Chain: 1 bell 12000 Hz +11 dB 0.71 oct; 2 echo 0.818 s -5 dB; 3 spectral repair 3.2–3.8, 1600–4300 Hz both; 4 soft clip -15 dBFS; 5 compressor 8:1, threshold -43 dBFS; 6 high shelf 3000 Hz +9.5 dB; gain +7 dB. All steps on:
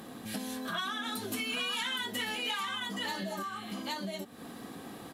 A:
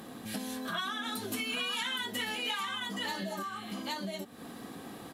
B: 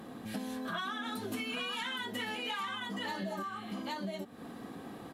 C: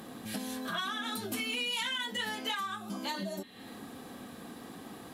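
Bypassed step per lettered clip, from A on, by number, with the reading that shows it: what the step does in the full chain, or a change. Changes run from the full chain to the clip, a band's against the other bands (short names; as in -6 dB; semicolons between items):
4, distortion -26 dB; 6, 8 kHz band -8.0 dB; 2, momentary loudness spread change +2 LU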